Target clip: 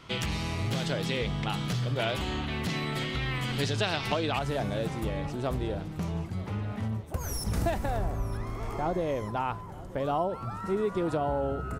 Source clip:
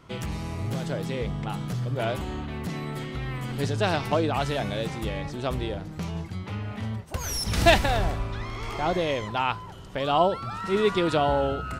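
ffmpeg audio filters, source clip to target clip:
ffmpeg -i in.wav -af "asetnsamples=nb_out_samples=441:pad=0,asendcmd='4.39 equalizer g -7;6.88 equalizer g -14',equalizer=frequency=3400:width=0.64:gain=9,acompressor=threshold=-25dB:ratio=6,aecho=1:1:934|1868|2802|3736:0.112|0.0572|0.0292|0.0149" out.wav

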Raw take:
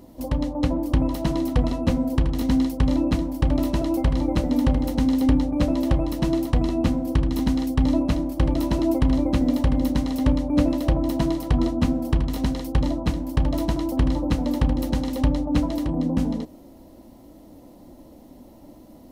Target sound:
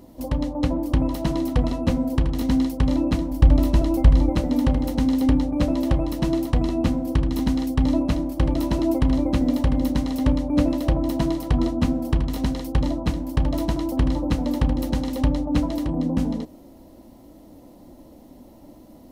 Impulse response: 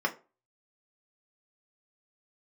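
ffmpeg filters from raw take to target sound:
-filter_complex "[0:a]asettb=1/sr,asplit=3[link_01][link_02][link_03];[link_01]atrim=end=3.314[link_04];[link_02]atrim=start=3.31:end=4.3,asetpts=PTS-STARTPTS,afade=type=in:duration=0.004:curve=qsin,afade=type=out:start_time=0.986:duration=0.004:curve=qsin,lowshelf=frequency=88:gain=11.5[link_05];[link_03]atrim=start=4.296[link_06];[link_04][link_05]acrossfade=duration=0.004:curve1=hsin:curve2=qsin[link_07];[link_07][link_06]acrossfade=duration=0.004:curve1=qsin:curve2=hsin"

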